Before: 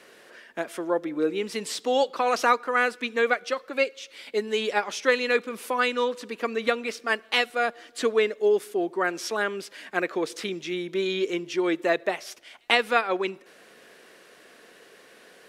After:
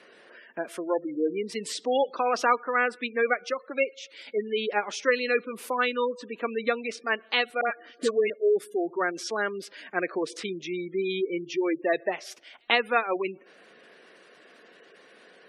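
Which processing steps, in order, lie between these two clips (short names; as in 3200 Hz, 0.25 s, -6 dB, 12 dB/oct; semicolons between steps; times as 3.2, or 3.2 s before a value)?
spectral gate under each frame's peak -20 dB strong; 7.61–8.3 dispersion highs, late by 69 ms, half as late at 1200 Hz; gain -1.5 dB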